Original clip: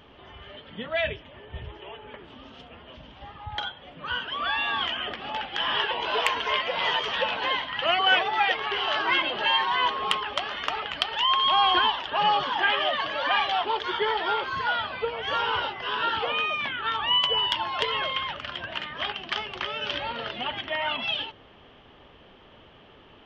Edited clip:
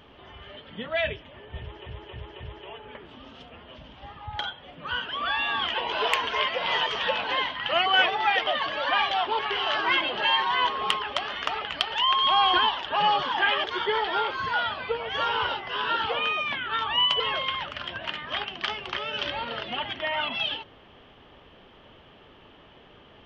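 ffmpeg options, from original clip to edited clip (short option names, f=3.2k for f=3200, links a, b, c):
-filter_complex "[0:a]asplit=9[a][b][c][d][e][f][g][h][i];[a]atrim=end=1.862[j];[b]atrim=start=1.588:end=1.862[k];[c]atrim=start=1.588:end=1.862[l];[d]atrim=start=1.588:end=4.932[m];[e]atrim=start=5.868:end=8.602[n];[f]atrim=start=12.848:end=13.772[o];[g]atrim=start=8.598:end=12.852[p];[h]atrim=start=13.768:end=17.332[q];[i]atrim=start=17.878[r];[j][k]acrossfade=d=0.004:c1=hsin:c2=hsin[s];[s][l]acrossfade=d=0.004:c1=hsin:c2=hsin[t];[t][m]acrossfade=d=0.004:c1=hsin:c2=hsin[u];[u][n]acrossfade=d=0.004:c1=hsin:c2=hsin[v];[v][o]acrossfade=d=0.004:c1=hsin:c2=hsin[w];[w][p]acrossfade=d=0.004:c1=hsin:c2=hsin[x];[x][q]acrossfade=d=0.004:c1=hsin:c2=hsin[y];[y][r]acrossfade=d=0.004:c1=hsin:c2=hsin"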